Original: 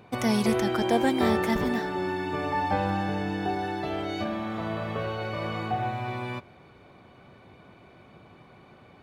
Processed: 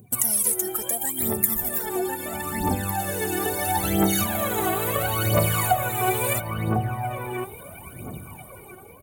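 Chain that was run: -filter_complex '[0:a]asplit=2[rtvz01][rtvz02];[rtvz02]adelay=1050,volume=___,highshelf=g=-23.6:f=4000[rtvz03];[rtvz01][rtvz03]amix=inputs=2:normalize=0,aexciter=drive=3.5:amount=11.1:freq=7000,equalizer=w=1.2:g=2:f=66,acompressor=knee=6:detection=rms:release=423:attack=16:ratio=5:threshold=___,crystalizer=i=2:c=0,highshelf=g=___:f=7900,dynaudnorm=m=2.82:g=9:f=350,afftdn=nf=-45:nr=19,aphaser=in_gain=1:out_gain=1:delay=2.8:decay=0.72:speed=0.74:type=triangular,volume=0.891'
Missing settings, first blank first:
0.501, 0.0282, 4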